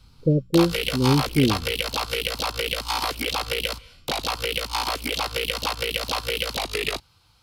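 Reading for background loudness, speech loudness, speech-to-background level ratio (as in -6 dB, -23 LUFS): -26.0 LUFS, -22.5 LUFS, 3.5 dB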